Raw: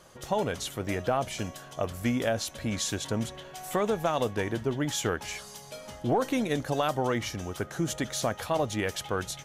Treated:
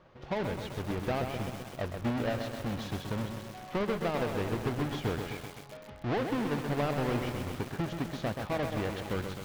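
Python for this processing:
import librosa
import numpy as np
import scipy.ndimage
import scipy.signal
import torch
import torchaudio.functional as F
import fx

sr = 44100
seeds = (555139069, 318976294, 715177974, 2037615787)

y = fx.halfwave_hold(x, sr)
y = fx.air_absorb(y, sr, metres=260.0)
y = fx.echo_crushed(y, sr, ms=129, feedback_pct=80, bits=6, wet_db=-5)
y = F.gain(torch.from_numpy(y), -8.0).numpy()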